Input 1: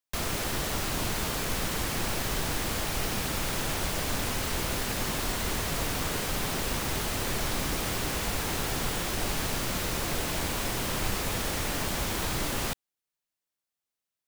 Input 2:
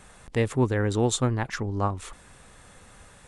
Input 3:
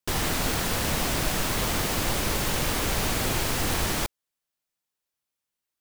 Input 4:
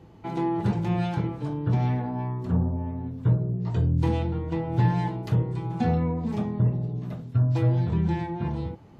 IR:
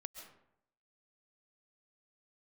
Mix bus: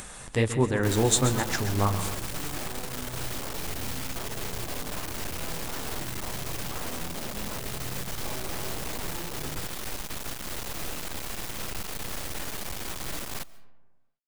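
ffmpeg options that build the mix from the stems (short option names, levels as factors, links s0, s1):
-filter_complex "[0:a]asoftclip=type=tanh:threshold=0.0335,acrusher=bits=3:dc=4:mix=0:aa=0.000001,adelay=700,volume=0.794,asplit=2[s0][s1];[s1]volume=0.398[s2];[1:a]flanger=delay=3.3:depth=7.4:regen=-42:speed=1.4:shape=triangular,highshelf=f=4000:g=8.5,volume=1.06,asplit=3[s3][s4][s5];[s4]volume=0.668[s6];[s5]volume=0.355[s7];[3:a]tiltshelf=f=970:g=5.5,aeval=exprs='0.0631*(abs(mod(val(0)/0.0631+3,4)-2)-1)':c=same,adelay=900,volume=0.251[s8];[4:a]atrim=start_sample=2205[s9];[s2][s6]amix=inputs=2:normalize=0[s10];[s10][s9]afir=irnorm=-1:irlink=0[s11];[s7]aecho=0:1:131|262|393|524|655|786|917|1048:1|0.53|0.281|0.149|0.0789|0.0418|0.0222|0.0117[s12];[s0][s3][s8][s11][s12]amix=inputs=5:normalize=0,acompressor=mode=upward:threshold=0.0178:ratio=2.5"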